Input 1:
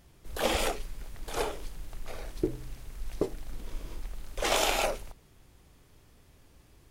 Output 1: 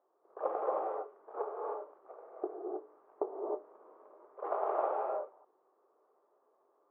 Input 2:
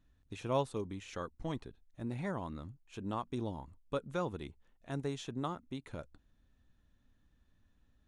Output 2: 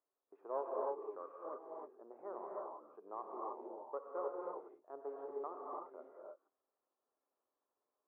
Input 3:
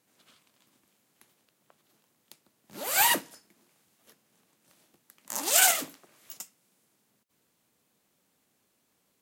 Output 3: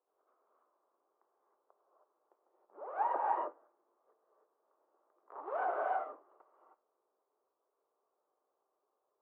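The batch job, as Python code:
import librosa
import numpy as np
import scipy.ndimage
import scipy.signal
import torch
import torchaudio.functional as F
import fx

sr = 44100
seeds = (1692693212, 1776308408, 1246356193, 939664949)

y = fx.cheby_harmonics(x, sr, harmonics=(6, 7, 8), levels_db=(-26, -25, -19), full_scale_db=-4.0)
y = scipy.signal.sosfilt(scipy.signal.ellip(3, 1.0, 70, [390.0, 1200.0], 'bandpass', fs=sr, output='sos'), y)
y = fx.rev_gated(y, sr, seeds[0], gate_ms=340, shape='rising', drr_db=-2.0)
y = F.gain(torch.from_numpy(y), -2.0).numpy()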